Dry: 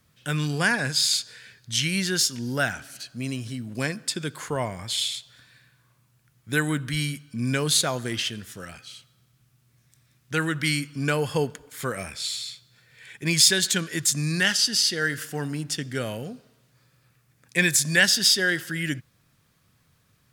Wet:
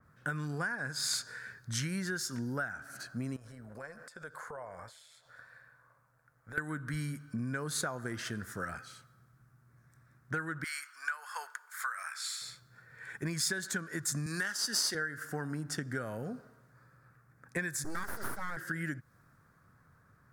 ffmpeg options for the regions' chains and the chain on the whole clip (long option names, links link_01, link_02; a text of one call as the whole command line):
ffmpeg -i in.wav -filter_complex "[0:a]asettb=1/sr,asplit=3[link_01][link_02][link_03];[link_01]atrim=end=3.364[link_04];[link_02]atrim=start=3.36:end=6.58,asetpts=PTS-STARTPTS,afade=type=in:duration=0.004:curve=qsin,afade=type=out:start_time=3.216:duration=0.004:curve=qsin,lowshelf=frequency=410:width_type=q:width=3:gain=-7,acompressor=threshold=-43dB:ratio=5:attack=3.2:release=140:knee=1:detection=peak,tremolo=f=160:d=0.4[link_05];[link_03]atrim=start=6.576[link_06];[link_04][link_05]acrossfade=duration=0.004:curve1=hsin:curve2=qsin[link_07];[link_07][link_06]acrossfade=duration=0.004:curve1=qsin:curve2=hsin,asettb=1/sr,asplit=3[link_08][link_09][link_10];[link_08]atrim=end=10.644[link_11];[link_09]atrim=start=10.64:end=12.42,asetpts=PTS-STARTPTS,afade=type=in:duration=0.004:curve=qsin,afade=type=out:start_time=1.776:duration=0.004:curve=qsin,highpass=frequency=1100:width=0.5412,highpass=frequency=1100:width=1.3066,deesser=0.45[link_12];[link_10]atrim=start=12.416[link_13];[link_11][link_12]acrossfade=duration=0.004:curve1=hsin:curve2=qsin[link_14];[link_14][link_13]acrossfade=duration=0.004:curve1=qsin:curve2=hsin,asettb=1/sr,asplit=3[link_15][link_16][link_17];[link_15]atrim=end=14.264[link_18];[link_16]atrim=start=14.26:end=14.95,asetpts=PTS-STARTPTS,afade=type=in:duration=0.004:curve=qsin,afade=type=out:start_time=0.686:duration=0.004:curve=qsin,aeval=exprs='if(lt(val(0),0),0.708*val(0),val(0))':channel_layout=same,highpass=200,highshelf=frequency=2600:gain=10[link_19];[link_17]atrim=start=14.946[link_20];[link_18][link_19]acrossfade=duration=0.004:curve1=hsin:curve2=qsin[link_21];[link_21][link_20]acrossfade=duration=0.004:curve1=qsin:curve2=hsin,asettb=1/sr,asplit=3[link_22][link_23][link_24];[link_22]atrim=end=17.844[link_25];[link_23]atrim=start=17.84:end=18.57,asetpts=PTS-STARTPTS,afade=type=in:duration=0.004:curve=qsin,afade=type=out:start_time=0.726:duration=0.004:curve=qsin,equalizer=frequency=2700:width_type=o:width=1.4:gain=-9.5,aeval=exprs='abs(val(0))':channel_layout=same[link_26];[link_24]atrim=start=18.566[link_27];[link_25][link_26]acrossfade=duration=0.004:curve1=hsin:curve2=qsin[link_28];[link_28][link_27]acrossfade=duration=0.004:curve1=qsin:curve2=hsin,highshelf=frequency=2100:width_type=q:width=3:gain=-12,acompressor=threshold=-33dB:ratio=12,adynamicequalizer=threshold=0.002:dfrequency=2900:dqfactor=0.7:tfrequency=2900:tqfactor=0.7:attack=5:release=100:ratio=0.375:range=3.5:mode=boostabove:tftype=highshelf" out.wav